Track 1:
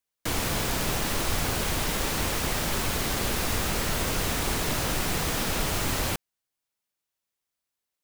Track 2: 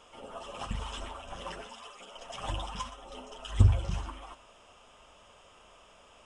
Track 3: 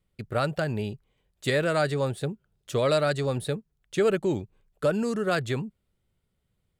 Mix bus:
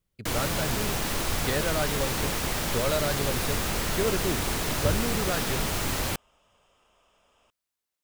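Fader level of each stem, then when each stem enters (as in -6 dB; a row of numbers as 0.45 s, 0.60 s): -1.0 dB, -8.5 dB, -5.0 dB; 0.00 s, 1.25 s, 0.00 s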